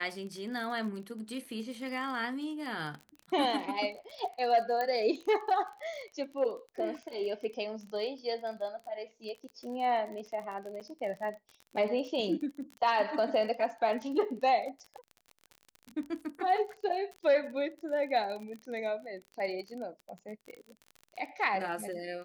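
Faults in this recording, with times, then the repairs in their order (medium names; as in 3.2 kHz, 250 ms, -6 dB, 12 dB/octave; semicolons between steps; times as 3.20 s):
crackle 30 per s -39 dBFS
4.81 s: pop -20 dBFS
10.80–10.81 s: dropout 7.7 ms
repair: de-click; interpolate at 10.80 s, 7.7 ms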